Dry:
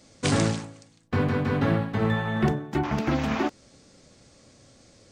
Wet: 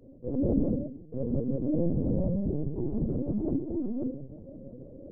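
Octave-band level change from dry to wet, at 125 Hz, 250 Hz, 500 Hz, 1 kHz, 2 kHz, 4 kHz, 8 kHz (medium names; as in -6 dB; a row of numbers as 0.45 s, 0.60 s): -5.0 dB, -1.5 dB, -3.5 dB, -22.0 dB, under -40 dB, under -40 dB, under -40 dB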